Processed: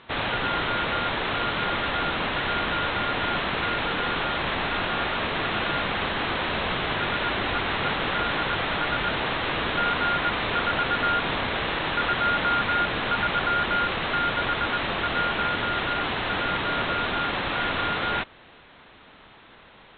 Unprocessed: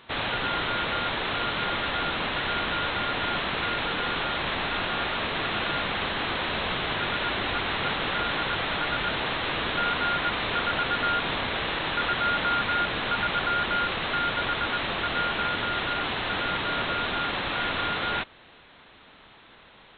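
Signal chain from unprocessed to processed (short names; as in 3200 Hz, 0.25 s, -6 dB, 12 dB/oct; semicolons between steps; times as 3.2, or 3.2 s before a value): air absorption 140 m; gain +3 dB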